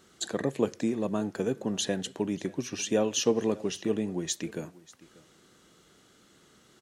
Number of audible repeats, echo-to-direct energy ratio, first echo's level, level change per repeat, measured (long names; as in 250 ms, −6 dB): 1, −21.5 dB, −21.5 dB, repeats not evenly spaced